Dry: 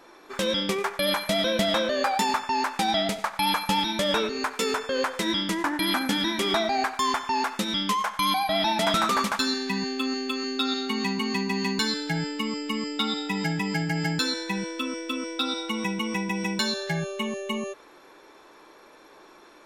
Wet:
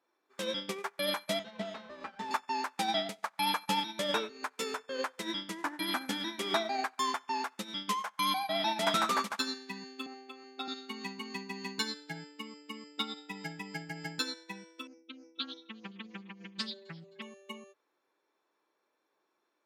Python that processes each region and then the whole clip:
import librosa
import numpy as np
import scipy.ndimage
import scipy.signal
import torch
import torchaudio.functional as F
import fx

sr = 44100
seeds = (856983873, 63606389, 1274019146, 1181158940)

y = fx.chain(x, sr, fx.lower_of_two(delay_ms=4.6),
    fx.spacing_loss(db_at_10k=21), at=(1.39, 2.31))
y = fx.chain(y, sr, fx.highpass(hz=410.0, slope=12),
    fx.tilt_eq(slope=-2.5),
    fx.small_body(hz=(730.0, 2200.0), ring_ms=40, db=15), at=(10.06, 10.68))
y = fx.chain(y, sr, fx.spec_expand(power=2.3),
    fx.echo_split(split_hz=460.0, low_ms=101, high_ms=262, feedback_pct=52, wet_db=-15.5),
    fx.doppler_dist(depth_ms=0.31), at=(14.87, 17.22))
y = scipy.signal.sosfilt(scipy.signal.butter(2, 94.0, 'highpass', fs=sr, output='sos'), y)
y = fx.low_shelf(y, sr, hz=120.0, db=-10.0)
y = fx.upward_expand(y, sr, threshold_db=-38.0, expansion=2.5)
y = y * librosa.db_to_amplitude(-3.0)